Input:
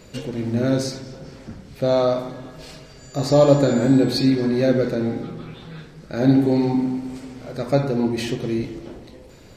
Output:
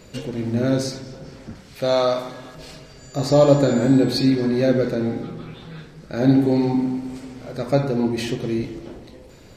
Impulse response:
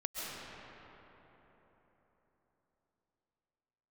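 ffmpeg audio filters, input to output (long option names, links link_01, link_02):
-filter_complex "[0:a]asettb=1/sr,asplit=3[link_01][link_02][link_03];[link_01]atrim=end=1.554[link_04];[link_02]atrim=start=1.55:end=2.55,asetpts=PTS-STARTPTS,afade=type=in:duration=0.004:curve=qsin,afade=type=out:start_time=0.996:duration=0.004:curve=qsin,tiltshelf=frequency=660:gain=-5.5[link_05];[link_03]atrim=start=2.546[link_06];[link_04][link_05]acrossfade=duration=0.004:curve1=hsin:curve2=qsin[link_07];[link_07][link_06]acrossfade=duration=0.004:curve1=qsin:curve2=hsin"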